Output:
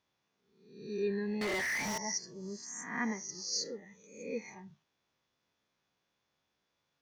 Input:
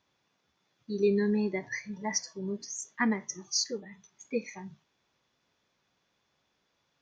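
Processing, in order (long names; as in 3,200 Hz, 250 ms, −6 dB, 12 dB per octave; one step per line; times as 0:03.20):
peak hold with a rise ahead of every peak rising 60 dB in 0.72 s
0:01.41–0:01.98: mid-hump overdrive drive 36 dB, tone 4,300 Hz, clips at −19 dBFS
level −8.5 dB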